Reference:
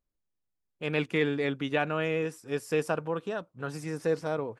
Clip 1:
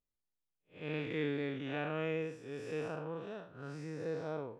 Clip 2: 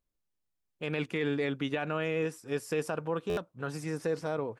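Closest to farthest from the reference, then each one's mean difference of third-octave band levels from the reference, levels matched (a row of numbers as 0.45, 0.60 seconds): 2, 1; 2.0, 4.5 decibels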